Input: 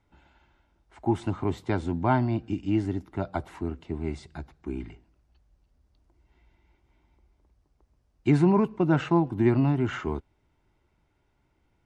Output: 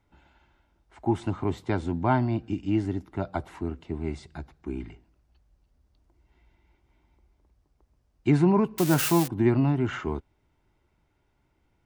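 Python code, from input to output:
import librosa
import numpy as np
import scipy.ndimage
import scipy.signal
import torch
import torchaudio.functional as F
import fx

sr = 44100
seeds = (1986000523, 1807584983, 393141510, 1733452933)

y = fx.crossing_spikes(x, sr, level_db=-16.5, at=(8.78, 9.28))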